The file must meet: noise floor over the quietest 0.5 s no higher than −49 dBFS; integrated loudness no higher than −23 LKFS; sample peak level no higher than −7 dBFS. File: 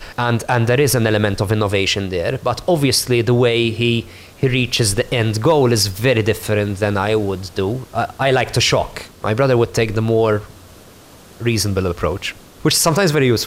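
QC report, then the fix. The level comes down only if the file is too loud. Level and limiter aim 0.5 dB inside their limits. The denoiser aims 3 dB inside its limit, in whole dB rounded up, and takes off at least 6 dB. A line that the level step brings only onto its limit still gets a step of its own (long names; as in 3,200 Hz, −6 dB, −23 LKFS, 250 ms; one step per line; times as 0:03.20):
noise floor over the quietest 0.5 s −43 dBFS: out of spec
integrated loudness −17.0 LKFS: out of spec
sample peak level −5.5 dBFS: out of spec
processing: level −6.5 dB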